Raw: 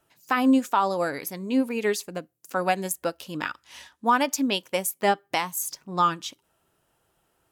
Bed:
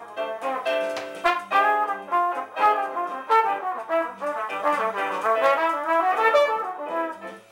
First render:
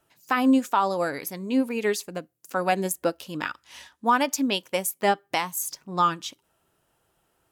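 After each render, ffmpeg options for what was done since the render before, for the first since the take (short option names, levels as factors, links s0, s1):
-filter_complex "[0:a]asettb=1/sr,asplit=3[s0][s1][s2];[s0]atrim=end=2.724[s3];[s1]atrim=start=2.72:end=3.19,asetpts=PTS-STARTPTS,afade=t=in:d=0.004:c=qsin,afade=t=out:st=0.466:d=0.004:c=qsin,equalizer=f=310:t=o:w=1.8:g=5.5[s4];[s2]atrim=start=3.186[s5];[s3][s4]acrossfade=d=0.004:c1=hsin:c2=qsin[s6];[s6][s5]acrossfade=d=0.004:c1=qsin:c2=hsin"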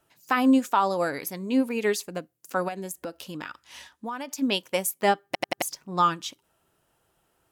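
-filter_complex "[0:a]asplit=3[s0][s1][s2];[s0]afade=t=out:st=2.67:d=0.02[s3];[s1]acompressor=threshold=0.0251:ratio=4:attack=3.2:release=140:knee=1:detection=peak,afade=t=in:st=2.67:d=0.02,afade=t=out:st=4.41:d=0.02[s4];[s2]afade=t=in:st=4.41:d=0.02[s5];[s3][s4][s5]amix=inputs=3:normalize=0,asplit=5[s6][s7][s8][s9][s10];[s6]atrim=end=5.352[s11];[s7]atrim=start=5.258:end=5.352[s12];[s8]atrim=start=5.258:end=5.352[s13];[s9]atrim=start=5.258:end=5.352[s14];[s10]atrim=start=5.618[s15];[s11][s12]acrossfade=d=0.004:c1=hsin:c2=hsin[s16];[s16][s13]acrossfade=d=0.004:c1=hsin:c2=hsin[s17];[s17][s14]acrossfade=d=0.004:c1=hsin:c2=hsin[s18];[s18][s15]acrossfade=d=0.004:c1=hsin:c2=hsin"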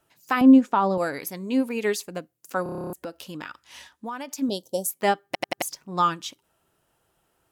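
-filter_complex "[0:a]asettb=1/sr,asplit=3[s0][s1][s2];[s0]atrim=end=0.414[s3];[s1]atrim=start=0.41:end=0.98,asetpts=PTS-STARTPTS,afade=t=in:d=0.004:c=qsin,afade=t=out:st=0.566:d=0.004:c=qsin,aemphasis=mode=reproduction:type=riaa[s4];[s2]atrim=start=0.976[s5];[s3][s4]acrossfade=d=0.004:c1=hsin:c2=qsin[s6];[s6][s5]acrossfade=d=0.004:c1=qsin:c2=hsin,asettb=1/sr,asplit=3[s7][s8][s9];[s7]atrim=end=4.494[s10];[s8]atrim=start=4.49:end=4.89,asetpts=PTS-STARTPTS,afade=t=in:d=0.004:c=qsin,afade=t=out:st=0.396:d=0.004:c=qsin,asuperstop=centerf=1700:order=8:qfactor=0.57[s11];[s9]atrim=start=4.886[s12];[s10][s11]acrossfade=d=0.004:c1=hsin:c2=qsin[s13];[s13][s12]acrossfade=d=0.004:c1=qsin:c2=hsin,asplit=11[s14][s15][s16][s17][s18][s19][s20][s21][s22][s23][s24];[s14]atrim=end=2.662[s25];[s15]atrim=start=2.628:end=2.662[s26];[s16]atrim=start=2.628:end=2.662[s27];[s17]atrim=start=2.628:end=2.662[s28];[s18]atrim=start=2.628:end=2.662[s29];[s19]atrim=start=2.628:end=2.662[s30];[s20]atrim=start=2.628:end=2.662[s31];[s21]atrim=start=2.628:end=2.662[s32];[s22]atrim=start=2.628:end=2.662[s33];[s23]atrim=start=2.628:end=2.662[s34];[s24]atrim=start=2.928[s35];[s25][s26]acrossfade=d=0.004:c1=hsin:c2=hsin[s36];[s36][s27]acrossfade=d=0.004:c1=hsin:c2=hsin[s37];[s37][s28]acrossfade=d=0.004:c1=hsin:c2=hsin[s38];[s38][s29]acrossfade=d=0.004:c1=hsin:c2=hsin[s39];[s39][s30]acrossfade=d=0.004:c1=hsin:c2=hsin[s40];[s40][s31]acrossfade=d=0.004:c1=hsin:c2=hsin[s41];[s41][s32]acrossfade=d=0.004:c1=hsin:c2=hsin[s42];[s42][s33]acrossfade=d=0.004:c1=hsin:c2=hsin[s43];[s43][s34]acrossfade=d=0.004:c1=hsin:c2=hsin[s44];[s44][s35]acrossfade=d=0.004:c1=hsin:c2=hsin"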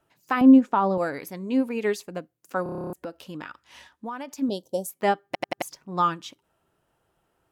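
-af "highshelf=f=3300:g=-9"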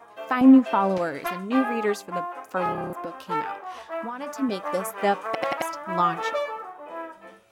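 -filter_complex "[1:a]volume=0.355[s0];[0:a][s0]amix=inputs=2:normalize=0"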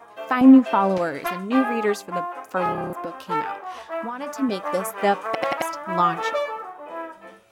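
-af "volume=1.33"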